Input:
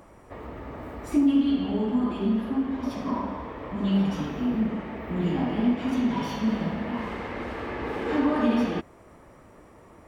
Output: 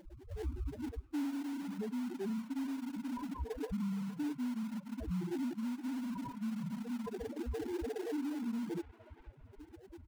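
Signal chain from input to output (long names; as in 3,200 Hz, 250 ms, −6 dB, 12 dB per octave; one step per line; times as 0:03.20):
spectral peaks only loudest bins 2
comb filter 2.8 ms, depth 57%
reversed playback
downward compressor 16 to 1, threshold −33 dBFS, peak gain reduction 17.5 dB
reversed playback
brickwall limiter −38 dBFS, peak gain reduction 10 dB
in parallel at −6 dB: sample-rate reduction 1,200 Hz, jitter 20%
on the sum: reverb reduction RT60 1.9 s
delay with a band-pass on its return 466 ms, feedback 42%, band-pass 1,400 Hz, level −11 dB
level +4.5 dB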